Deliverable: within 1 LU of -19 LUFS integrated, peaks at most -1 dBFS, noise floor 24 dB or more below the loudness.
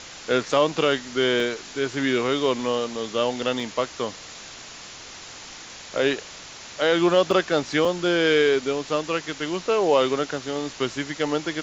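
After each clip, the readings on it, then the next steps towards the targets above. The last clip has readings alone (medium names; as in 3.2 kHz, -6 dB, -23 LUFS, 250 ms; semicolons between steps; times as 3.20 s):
dropouts 4; longest dropout 2.2 ms; noise floor -41 dBFS; noise floor target -48 dBFS; loudness -23.5 LUFS; peak level -6.5 dBFS; loudness target -19.0 LUFS
-> interpolate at 1.40/3.60/7.31/7.85 s, 2.2 ms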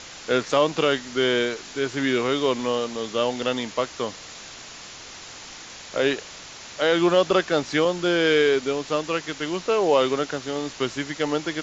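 dropouts 0; noise floor -41 dBFS; noise floor target -48 dBFS
-> noise reduction 7 dB, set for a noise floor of -41 dBFS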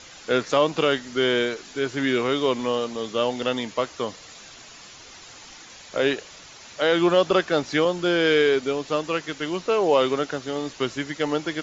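noise floor -45 dBFS; noise floor target -48 dBFS
-> noise reduction 6 dB, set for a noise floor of -45 dBFS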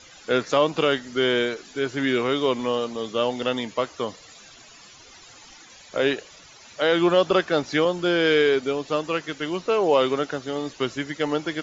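noise floor -48 dBFS; loudness -23.5 LUFS; peak level -6.5 dBFS; loudness target -19.0 LUFS
-> trim +4.5 dB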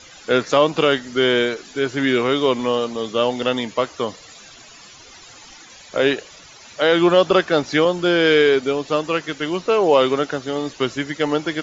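loudness -19.0 LUFS; peak level -2.0 dBFS; noise floor -44 dBFS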